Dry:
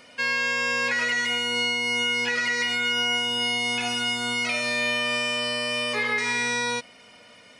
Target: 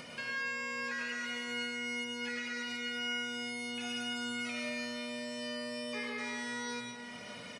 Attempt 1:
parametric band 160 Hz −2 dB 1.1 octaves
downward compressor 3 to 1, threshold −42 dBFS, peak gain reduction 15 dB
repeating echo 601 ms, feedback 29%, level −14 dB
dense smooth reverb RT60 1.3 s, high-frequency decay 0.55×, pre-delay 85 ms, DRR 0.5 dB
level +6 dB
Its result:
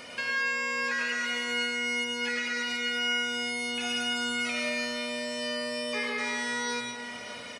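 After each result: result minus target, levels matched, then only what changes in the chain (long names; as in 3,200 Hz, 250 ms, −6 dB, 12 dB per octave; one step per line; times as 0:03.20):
downward compressor: peak gain reduction −8 dB; 125 Hz band −6.5 dB
change: downward compressor 3 to 1, threshold −54 dBFS, peak gain reduction 23 dB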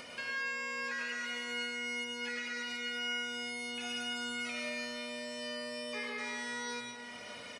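125 Hz band −6.0 dB
change: parametric band 160 Hz +8 dB 1.1 octaves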